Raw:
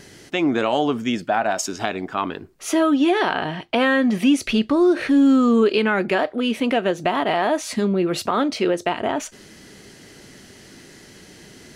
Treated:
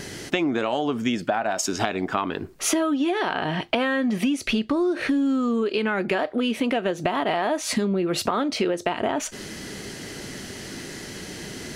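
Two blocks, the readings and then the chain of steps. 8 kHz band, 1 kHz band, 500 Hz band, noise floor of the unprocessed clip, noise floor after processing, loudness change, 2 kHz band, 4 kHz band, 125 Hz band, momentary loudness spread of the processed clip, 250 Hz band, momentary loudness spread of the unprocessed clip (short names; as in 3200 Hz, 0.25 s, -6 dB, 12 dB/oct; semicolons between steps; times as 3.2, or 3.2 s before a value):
+2.0 dB, -3.5 dB, -4.0 dB, -46 dBFS, -38 dBFS, -4.5 dB, -3.0 dB, -1.5 dB, -1.5 dB, 13 LU, -5.0 dB, 9 LU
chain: compressor 10:1, threshold -29 dBFS, peak gain reduction 16.5 dB; gain +8.5 dB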